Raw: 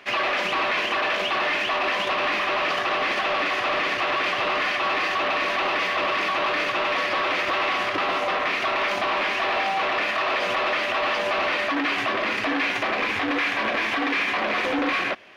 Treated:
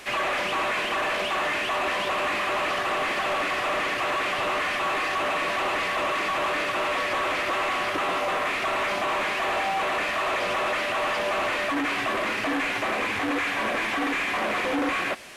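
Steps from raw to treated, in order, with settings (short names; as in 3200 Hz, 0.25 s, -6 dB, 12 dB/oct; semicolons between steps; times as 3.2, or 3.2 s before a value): delta modulation 64 kbps, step -38 dBFS; in parallel at -11 dB: soft clip -30.5 dBFS, distortion -11 dB; on the sum: gain -2 dB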